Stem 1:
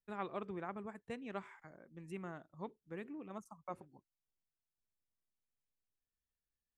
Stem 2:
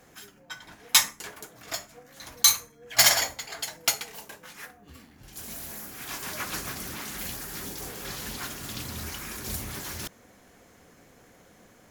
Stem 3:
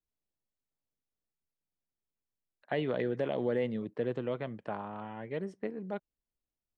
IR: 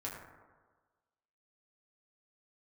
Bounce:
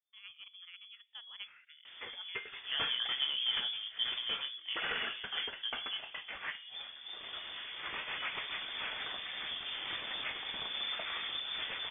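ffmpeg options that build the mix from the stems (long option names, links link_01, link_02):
-filter_complex "[0:a]dynaudnorm=framelen=150:gausssize=17:maxgain=4dB,adelay=50,volume=-11dB,asplit=2[link_01][link_02];[link_02]volume=-19.5dB[link_03];[1:a]asoftclip=type=tanh:threshold=-18.5dB,adelay=1850,volume=-1.5dB[link_04];[2:a]flanger=delay=16:depth=8:speed=0.52,volume=-0.5dB[link_05];[link_01][link_04]amix=inputs=2:normalize=0,dynaudnorm=framelen=190:gausssize=11:maxgain=5.5dB,alimiter=level_in=2dB:limit=-24dB:level=0:latency=1:release=446,volume=-2dB,volume=0dB[link_06];[3:a]atrim=start_sample=2205[link_07];[link_03][link_07]afir=irnorm=-1:irlink=0[link_08];[link_05][link_06][link_08]amix=inputs=3:normalize=0,lowpass=frequency=3100:width_type=q:width=0.5098,lowpass=frequency=3100:width_type=q:width=0.6013,lowpass=frequency=3100:width_type=q:width=0.9,lowpass=frequency=3100:width_type=q:width=2.563,afreqshift=-3600"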